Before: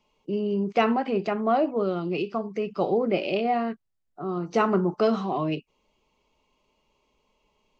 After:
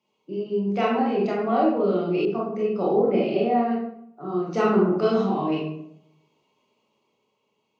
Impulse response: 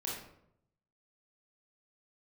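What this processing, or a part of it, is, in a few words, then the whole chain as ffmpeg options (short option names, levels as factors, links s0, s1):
far laptop microphone: -filter_complex "[1:a]atrim=start_sample=2205[s0];[0:a][s0]afir=irnorm=-1:irlink=0,highpass=f=110:w=0.5412,highpass=f=110:w=1.3066,dynaudnorm=f=110:g=17:m=1.58,asettb=1/sr,asplit=3[s1][s2][s3];[s1]atrim=end=2.254[s4];[s2]atrim=start=2.25:end=3.71,asetpts=PTS-STARTPTS,afade=t=in:d=0.004:c=qsin,afade=t=out:st=1.456:d=0.004:c=qsin,adynamicequalizer=threshold=0.0141:dfrequency=1800:dqfactor=0.7:tfrequency=1800:tqfactor=0.7:attack=5:release=100:ratio=0.375:range=3.5:mode=cutabove:tftype=highshelf[s5];[s3]atrim=start=3.706[s6];[s4][s5]acrossfade=d=0.004:c1=hsin:c2=qsin[s7];[s7][s6]acrossfade=d=0.004:c1=qsin:c2=hsin,volume=0.631"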